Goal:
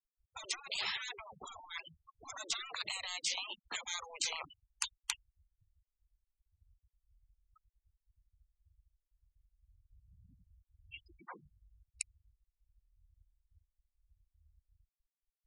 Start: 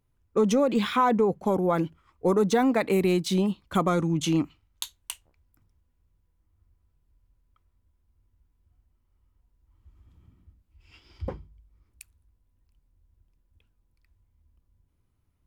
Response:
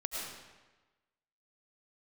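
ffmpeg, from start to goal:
-filter_complex "[0:a]acrossover=split=490|2700[link_01][link_02][link_03];[link_01]acompressor=threshold=-32dB:ratio=4[link_04];[link_02]acompressor=threshold=-38dB:ratio=4[link_05];[link_03]acompressor=threshold=-40dB:ratio=4[link_06];[link_04][link_05][link_06]amix=inputs=3:normalize=0,afftfilt=real='re*lt(hypot(re,im),0.0224)':imag='im*lt(hypot(re,im),0.0224)':win_size=1024:overlap=0.75,adynamicsmooth=sensitivity=4:basefreq=3800,equalizer=frequency=7300:width=0.62:gain=12,afftfilt=real='re*gte(hypot(re,im),0.00562)':imag='im*gte(hypot(re,im),0.00562)':win_size=1024:overlap=0.75,lowshelf=frequency=410:gain=-12,volume=8.5dB"

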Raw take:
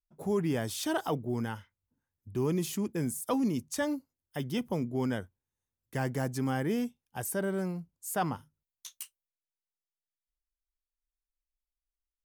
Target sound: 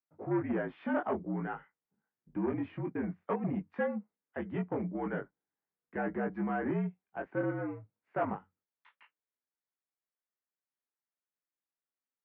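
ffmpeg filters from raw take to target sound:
ffmpeg -i in.wav -af "flanger=delay=18.5:depth=3:speed=0.5,aeval=exprs='0.0944*(cos(1*acos(clip(val(0)/0.0944,-1,1)))-cos(1*PI/2))+0.00422*(cos(2*acos(clip(val(0)/0.0944,-1,1)))-cos(2*PI/2))+0.0133*(cos(5*acos(clip(val(0)/0.0944,-1,1)))-cos(5*PI/2))':channel_layout=same,highpass=frequency=240:width_type=q:width=0.5412,highpass=frequency=240:width_type=q:width=1.307,lowpass=frequency=2200:width_type=q:width=0.5176,lowpass=frequency=2200:width_type=q:width=0.7071,lowpass=frequency=2200:width_type=q:width=1.932,afreqshift=-60" out.wav

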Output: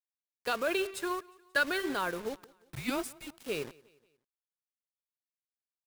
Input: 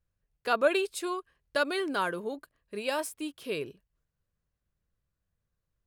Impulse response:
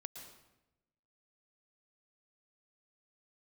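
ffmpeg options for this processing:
-filter_complex "[0:a]asettb=1/sr,asplit=3[link_01][link_02][link_03];[link_01]atrim=end=0.774[link_04];[link_02]atrim=start=0.77:end=1.81,asetpts=PTS-STARTPTS,afade=type=in:duration=0.004:curve=qsin,afade=type=out:start_time=1.036:duration=0.004:curve=qsin,equalizer=frequency=1600:width=4.9:gain=13[link_05];[link_03]atrim=start=1.806[link_06];[link_04][link_05]acrossfade=duration=0.004:curve1=hsin:curve2=qsin[link_07];[link_07][link_06]acrossfade=duration=0.004:curve1=qsin:curve2=hsin,asplit=3[link_08][link_09][link_10];[link_08]afade=type=out:start_time=2.33:duration=0.02[link_11];[link_09]afreqshift=-280,afade=type=in:start_time=2.33:duration=0.02,afade=type=out:start_time=3.26:duration=0.02[link_12];[link_10]afade=type=in:start_time=3.26:duration=0.02[link_13];[link_11][link_12][link_13]amix=inputs=3:normalize=0,acrossover=split=100|1700[link_14][link_15][link_16];[link_14]acompressor=threshold=-58dB:ratio=6[link_17];[link_15]alimiter=limit=-23dB:level=0:latency=1:release=24[link_18];[link_17][link_18][link_16]amix=inputs=3:normalize=0,aeval=exprs='val(0)+0.000562*(sin(2*PI*50*n/s)+sin(2*PI*2*50*n/s)/2+sin(2*PI*3*50*n/s)/3+sin(2*PI*4*50*n/s)/4+sin(2*PI*5*50*n/s)/5)':channel_layout=same,acrusher=bits=6:mix=0:aa=0.000001,bandreject=frequency=387.3:width_type=h:width=4,bandreject=frequency=774.6:width_type=h:width=4,bandreject=frequency=1161.9:width_type=h:width=4,bandreject=frequency=1549.2:width_type=h:width=4,bandreject=frequency=1936.5:width_type=h:width=4,bandreject=frequency=2323.8:width_type=h:width=4,bandreject=frequency=2711.1:width_type=h:width=4,bandreject=frequency=3098.4:width_type=h:width=4,bandreject=frequency=3485.7:width_type=h:width=4,bandreject=frequency=3873:width_type=h:width=4,bandreject=frequency=4260.3:width_type=h:width=4,bandreject=frequency=4647.6:width_type=h:width=4,bandreject=frequency=5034.9:width_type=h:width=4,bandreject=frequency=5422.2:width_type=h:width=4,bandreject=frequency=5809.5:width_type=h:width=4,bandreject=frequency=6196.8:width_type=h:width=4,bandreject=frequency=6584.1:width_type=h:width=4,bandreject=frequency=6971.4:width_type=h:width=4,bandreject=frequency=7358.7:width_type=h:width=4,bandreject=frequency=7746:width_type=h:width=4,bandreject=frequency=8133.3:width_type=h:width=4,bandreject=frequency=8520.6:width_type=h:width=4,bandreject=frequency=8907.9:width_type=h:width=4,bandreject=frequency=9295.2:width_type=h:width=4,bandreject=frequency=9682.5:width_type=h:width=4,bandreject=frequency=10069.8:width_type=h:width=4,bandreject=frequency=10457.1:width_type=h:width=4,bandreject=frequency=10844.4:width_type=h:width=4,bandreject=frequency=11231.7:width_type=h:width=4,bandreject=frequency=11619:width_type=h:width=4,bandreject=frequency=12006.3:width_type=h:width=4,bandreject=frequency=12393.6:width_type=h:width=4,bandreject=frequency=12780.9:width_type=h:width=4,bandreject=frequency=13168.2:width_type=h:width=4,bandreject=frequency=13555.5:width_type=h:width=4,bandreject=frequency=13942.8:width_type=h:width=4,aeval=exprs='sgn(val(0))*max(abs(val(0))-0.00531,0)':channel_layout=same,aecho=1:1:178|356|534:0.0668|0.0294|0.0129,adynamicequalizer=threshold=0.00282:dfrequency=2700:dqfactor=0.7:tfrequency=2700:tqfactor=0.7:attack=5:release=100:ratio=0.375:range=2:mode=cutabove:tftype=highshelf"

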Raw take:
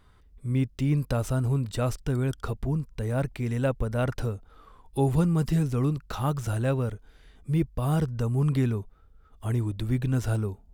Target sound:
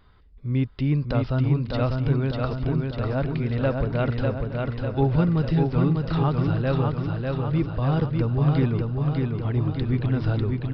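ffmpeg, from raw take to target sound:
ffmpeg -i in.wav -filter_complex "[0:a]asplit=2[link_01][link_02];[link_02]aecho=0:1:597|1194|1791|2388|2985|3582|4179|4776:0.668|0.388|0.225|0.13|0.0756|0.0439|0.0254|0.0148[link_03];[link_01][link_03]amix=inputs=2:normalize=0,aresample=11025,aresample=44100,asplit=2[link_04][link_05];[link_05]aecho=0:1:866:0.112[link_06];[link_04][link_06]amix=inputs=2:normalize=0,volume=2dB" out.wav

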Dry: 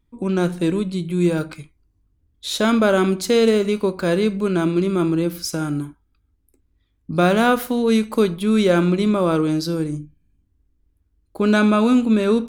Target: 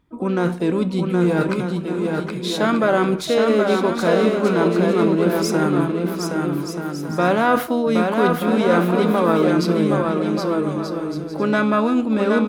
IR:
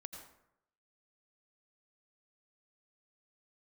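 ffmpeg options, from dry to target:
-filter_complex "[0:a]areverse,acompressor=threshold=-25dB:ratio=5,areverse,highshelf=frequency=3700:gain=-7.5,asplit=2[link_01][link_02];[link_02]asetrate=58866,aresample=44100,atempo=0.749154,volume=-13dB[link_03];[link_01][link_03]amix=inputs=2:normalize=0,highpass=frequency=120:poles=1,equalizer=frequency=1000:width_type=o:width=1.6:gain=5.5,asplit=2[link_04][link_05];[link_05]aecho=0:1:770|1232|1509|1676|1775:0.631|0.398|0.251|0.158|0.1[link_06];[link_04][link_06]amix=inputs=2:normalize=0,volume=7.5dB"

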